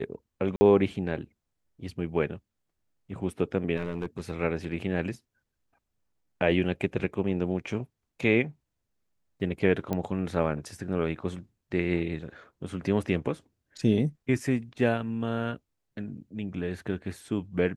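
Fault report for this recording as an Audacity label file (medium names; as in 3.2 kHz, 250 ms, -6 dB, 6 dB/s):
0.560000	0.610000	dropout 50 ms
3.770000	4.210000	clipped -26 dBFS
9.930000	9.930000	pop -16 dBFS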